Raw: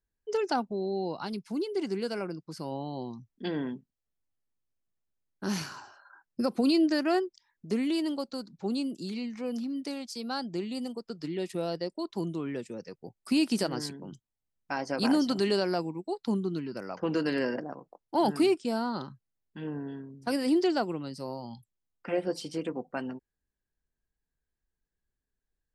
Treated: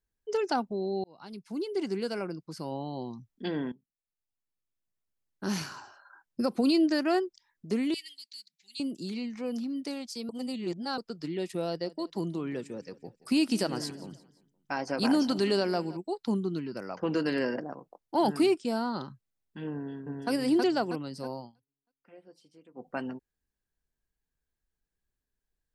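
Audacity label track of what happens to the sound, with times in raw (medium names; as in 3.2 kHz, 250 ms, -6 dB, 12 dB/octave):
1.040000	1.740000	fade in
3.720000	5.480000	fade in, from -18 dB
7.940000	8.800000	elliptic high-pass 2 kHz
10.290000	10.980000	reverse
11.670000	15.970000	feedback delay 173 ms, feedback 44%, level -19 dB
19.740000	20.310000	echo throw 320 ms, feedback 45%, level -1 dB
21.380000	22.880000	dip -23.5 dB, fades 0.14 s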